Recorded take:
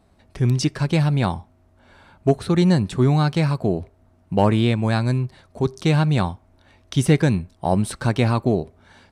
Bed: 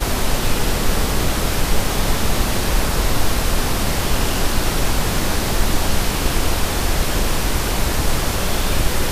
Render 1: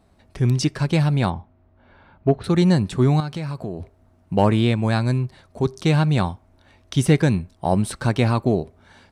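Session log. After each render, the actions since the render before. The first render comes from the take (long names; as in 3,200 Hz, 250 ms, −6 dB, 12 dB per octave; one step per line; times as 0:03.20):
0:01.30–0:02.44: high-frequency loss of the air 290 metres
0:03.20–0:03.80: downward compressor 4 to 1, threshold −26 dBFS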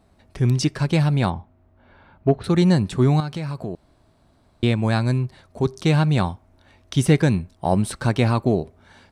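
0:03.75–0:04.63: fill with room tone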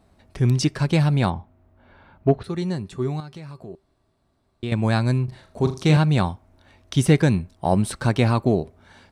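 0:02.43–0:04.72: tuned comb filter 390 Hz, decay 0.17 s, harmonics odd, mix 70%
0:05.24–0:05.97: flutter between parallel walls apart 6.7 metres, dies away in 0.32 s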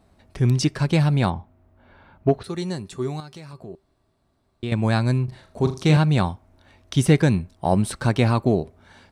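0:02.29–0:03.53: bass and treble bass −4 dB, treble +6 dB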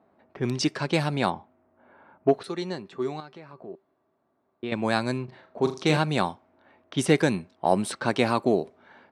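high-pass filter 270 Hz 12 dB per octave
low-pass that shuts in the quiet parts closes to 1,500 Hz, open at −19.5 dBFS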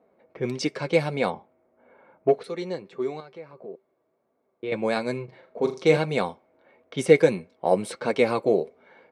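hollow resonant body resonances 490/2,200 Hz, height 13 dB, ringing for 30 ms
flanger 1.6 Hz, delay 4 ms, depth 2.6 ms, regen −47%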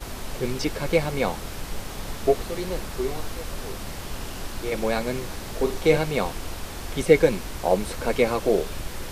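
mix in bed −15 dB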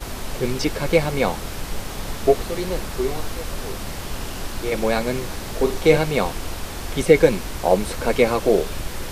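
level +4 dB
brickwall limiter −1 dBFS, peak gain reduction 2.5 dB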